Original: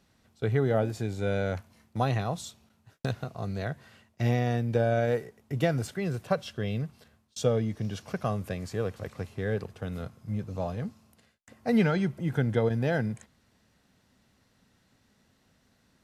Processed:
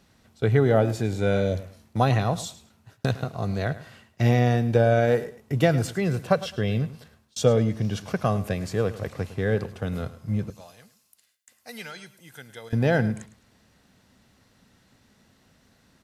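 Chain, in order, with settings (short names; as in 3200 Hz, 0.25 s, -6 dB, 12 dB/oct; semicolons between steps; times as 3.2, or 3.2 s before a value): 1.36–1.83 spectral repair 680–3000 Hz both; 10.5–12.73 pre-emphasis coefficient 0.97; feedback echo 0.106 s, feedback 23%, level -16 dB; gain +6 dB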